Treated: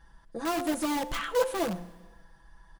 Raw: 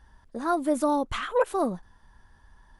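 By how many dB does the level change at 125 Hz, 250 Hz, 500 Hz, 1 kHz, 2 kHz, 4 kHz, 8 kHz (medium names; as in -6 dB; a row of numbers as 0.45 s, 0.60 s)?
0.0 dB, -3.0 dB, -3.5 dB, -5.0 dB, 0.0 dB, +3.0 dB, +3.5 dB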